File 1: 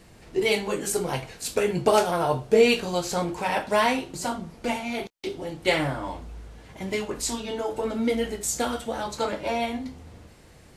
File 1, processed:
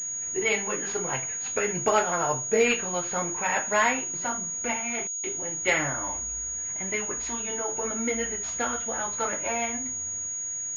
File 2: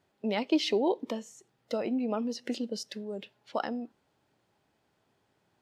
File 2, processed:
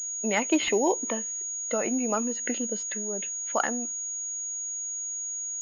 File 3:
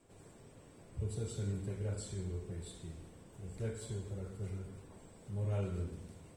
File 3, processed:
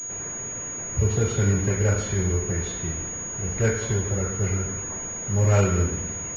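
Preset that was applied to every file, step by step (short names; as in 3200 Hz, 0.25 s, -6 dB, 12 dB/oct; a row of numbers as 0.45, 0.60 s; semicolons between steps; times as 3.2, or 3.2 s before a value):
bell 1800 Hz +11 dB 1.7 oct; pulse-width modulation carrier 6700 Hz; normalise peaks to -9 dBFS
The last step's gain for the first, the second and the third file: -6.5, +1.0, +16.0 dB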